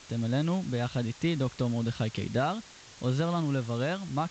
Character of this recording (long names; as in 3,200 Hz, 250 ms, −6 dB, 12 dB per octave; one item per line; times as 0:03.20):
a quantiser's noise floor 8 bits, dither triangular
G.722